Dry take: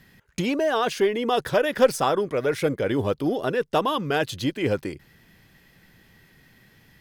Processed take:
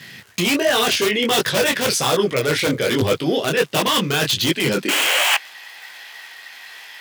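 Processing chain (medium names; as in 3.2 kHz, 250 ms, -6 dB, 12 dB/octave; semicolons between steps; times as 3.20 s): painted sound noise, 4.88–5.35 s, 490–3300 Hz -26 dBFS; frequency weighting D; crackle 320 per s -44 dBFS; in parallel at +1.5 dB: integer overflow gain 14 dB; on the sum: high-pass sweep 110 Hz -> 820 Hz, 4.60–5.31 s; reverse; compression, threshold -19 dBFS, peak gain reduction 9.5 dB; reverse; detune thickener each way 46 cents; trim +7.5 dB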